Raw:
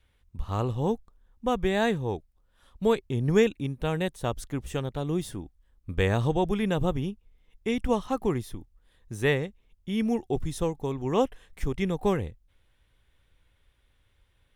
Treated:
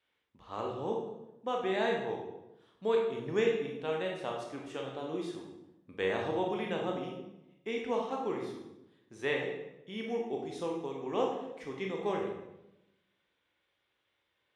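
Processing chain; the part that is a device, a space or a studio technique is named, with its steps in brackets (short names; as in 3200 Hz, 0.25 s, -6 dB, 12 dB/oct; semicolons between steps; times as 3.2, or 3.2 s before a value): supermarket ceiling speaker (BPF 310–5200 Hz; reverb RT60 0.90 s, pre-delay 18 ms, DRR -0.5 dB); gain -7.5 dB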